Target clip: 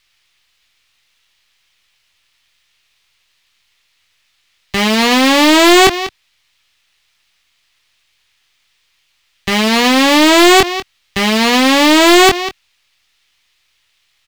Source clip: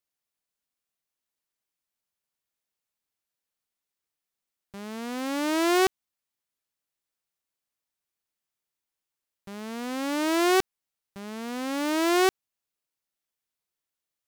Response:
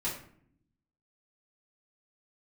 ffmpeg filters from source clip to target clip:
-filter_complex "[0:a]lowshelf=f=140:g=8.5,bandreject=f=1.5k:w=5.2,asplit=2[a][b];[b]adelay=23,volume=-8.5dB[c];[a][c]amix=inputs=2:normalize=0,acrossover=split=150|970|6000[d][e][f][g];[e]acrusher=bits=6:mix=0:aa=0.000001[h];[g]aeval=exprs='abs(val(0))':c=same[i];[d][h][f][i]amix=inputs=4:normalize=0,equalizer=f=2.9k:t=o:w=2.7:g=13,aecho=1:1:195:0.0708,asoftclip=type=tanh:threshold=-19dB,alimiter=level_in=22.5dB:limit=-1dB:release=50:level=0:latency=1,volume=-2.5dB"

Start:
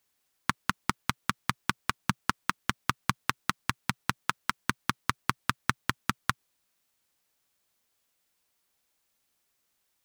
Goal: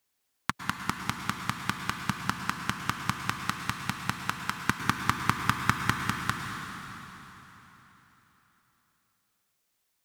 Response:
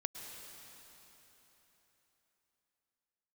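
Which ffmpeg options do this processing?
-filter_complex "[0:a]asettb=1/sr,asplit=3[a][b][c];[a]atrim=end=4.554[d];[b]atrim=start=4.55:end=5.96,asetpts=PTS-STARTPTS,afade=t=in:d=0.004:c=qsin,afade=t=out:st=1.406:d=0.004:c=qsin,acontrast=39[e];[c]atrim=start=5.956[f];[d][e]acrossfade=d=0.004:c1=hsin:c2=qsin[g];[g][f]acrossfade=d=0.004:c1=qsin:c2=hsin[h];[1:a]atrim=start_sample=2205[i];[h][i]afir=irnorm=-1:irlink=0"

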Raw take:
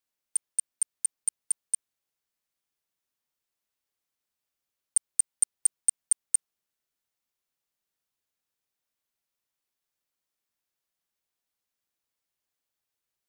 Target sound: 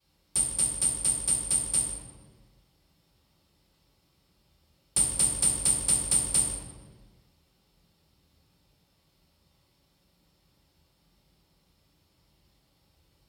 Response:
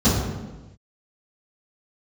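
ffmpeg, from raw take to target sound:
-filter_complex "[0:a]acompressor=threshold=-26dB:ratio=6[a];[1:a]atrim=start_sample=2205,asetrate=32634,aresample=44100[b];[a][b]afir=irnorm=-1:irlink=0"

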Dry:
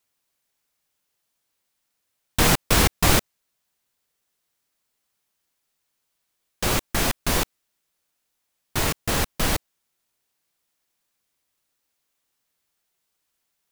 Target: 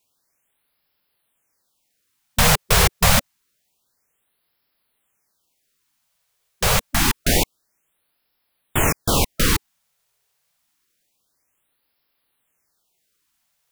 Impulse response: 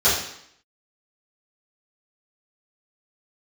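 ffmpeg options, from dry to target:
-filter_complex "[0:a]asplit=2[a][b];[b]alimiter=limit=-12dB:level=0:latency=1:release=65,volume=2dB[c];[a][c]amix=inputs=2:normalize=0,afftfilt=real='re*(1-between(b*sr/1024,250*pow(7800/250,0.5+0.5*sin(2*PI*0.27*pts/sr))/1.41,250*pow(7800/250,0.5+0.5*sin(2*PI*0.27*pts/sr))*1.41))':imag='im*(1-between(b*sr/1024,250*pow(7800/250,0.5+0.5*sin(2*PI*0.27*pts/sr))/1.41,250*pow(7800/250,0.5+0.5*sin(2*PI*0.27*pts/sr))*1.41))':win_size=1024:overlap=0.75,volume=-1.5dB"

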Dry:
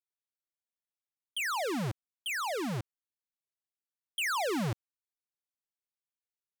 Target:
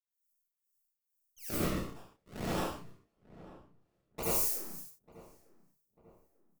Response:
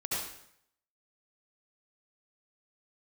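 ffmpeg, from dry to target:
-filter_complex "[0:a]aemphasis=mode=production:type=50fm,agate=range=-20dB:threshold=-29dB:ratio=16:detection=peak,acompressor=threshold=-43dB:ratio=6,asoftclip=type=tanh:threshold=-35.5dB,acrossover=split=2200[a][b];[a]aeval=exprs='val(0)*(1-1/2+1/2*cos(2*PI*2.2*n/s))':c=same[c];[b]aeval=exprs='val(0)*(1-1/2-1/2*cos(2*PI*2.2*n/s))':c=same[d];[c][d]amix=inputs=2:normalize=0,aeval=exprs='max(val(0),0)':c=same,aexciter=amount=3.4:drive=9.9:freq=5.1k,asettb=1/sr,asplit=3[e][f][g];[e]atrim=end=1.494[h];[f]atrim=start=1.49:end=4.23,asetpts=PTS-STARTPTS,afade=t=in:d=0.004:c=qsin,afade=t=out:st=2.736:d=0.004:c=qsin,acrusher=samples=39:mix=1:aa=0.000001:lfo=1:lforange=39:lforate=1.7[i];[g]atrim=start=4.226[j];[h][i]acrossfade=d=0.004:c1=hsin:c2=qsin[k];[k][j]acrossfade=d=0.004:c1=qsin:c2=hsin,asplit=2[l][m];[m]adelay=31,volume=-4.5dB[n];[l][n]amix=inputs=2:normalize=0,asplit=2[o][p];[p]adelay=894,lowpass=f=1.2k:p=1,volume=-18dB,asplit=2[q][r];[r]adelay=894,lowpass=f=1.2k:p=1,volume=0.49,asplit=2[s][t];[t]adelay=894,lowpass=f=1.2k:p=1,volume=0.49,asplit=2[u][v];[v]adelay=894,lowpass=f=1.2k:p=1,volume=0.49[w];[o][q][s][u][w]amix=inputs=5:normalize=0[x];[1:a]atrim=start_sample=2205,afade=t=out:st=0.28:d=0.01,atrim=end_sample=12789[y];[x][y]afir=irnorm=-1:irlink=0"

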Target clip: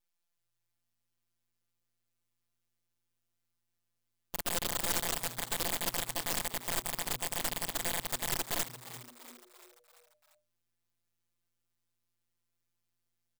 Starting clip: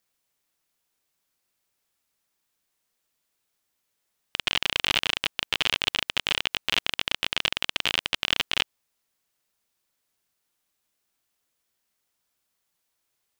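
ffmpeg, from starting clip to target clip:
-filter_complex "[0:a]afftdn=nr=22:nf=-48,firequalizer=gain_entry='entry(190,0);entry(320,-2);entry(4900,13)':delay=0.05:min_phase=1,acrossover=split=200|3000[a][b][c];[b]acompressor=threshold=-37dB:ratio=4[d];[a][d][c]amix=inputs=3:normalize=0,asplit=2[e][f];[f]alimiter=limit=-18.5dB:level=0:latency=1:release=19,volume=0.5dB[g];[e][g]amix=inputs=2:normalize=0,aeval=exprs='abs(val(0))':c=same,afftfilt=real='hypot(re,im)*cos(PI*b)':imag='0':win_size=1024:overlap=0.75,aeval=exprs='(mod(14.1*val(0)+1,2)-1)/14.1':c=same,asplit=6[h][i][j][k][l][m];[i]adelay=343,afreqshift=120,volume=-14dB[n];[j]adelay=686,afreqshift=240,volume=-19.4dB[o];[k]adelay=1029,afreqshift=360,volume=-24.7dB[p];[l]adelay=1372,afreqshift=480,volume=-30.1dB[q];[m]adelay=1715,afreqshift=600,volume=-35.4dB[r];[h][n][o][p][q][r]amix=inputs=6:normalize=0"

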